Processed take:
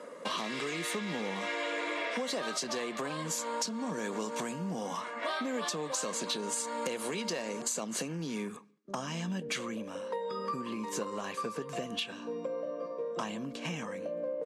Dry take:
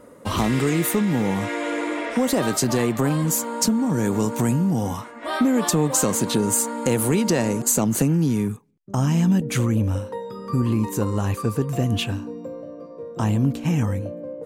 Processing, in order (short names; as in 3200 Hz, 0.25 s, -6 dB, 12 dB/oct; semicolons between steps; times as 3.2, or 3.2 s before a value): low shelf 500 Hz -10 dB; reverse; upward compressor, threshold -39 dBFS; reverse; LPF 6000 Hz 12 dB/oct; on a send at -21.5 dB: reverb RT60 0.60 s, pre-delay 3 ms; on the sum: dynamic EQ 4000 Hz, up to +4 dB, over -45 dBFS, Q 1.4; comb 1.8 ms, depth 32%; compressor 12:1, threshold -35 dBFS, peak gain reduction 16 dB; hard clip -30 dBFS, distortion -25 dB; steep high-pass 170 Hz 36 dB/oct; gain +4 dB; Vorbis 48 kbps 32000 Hz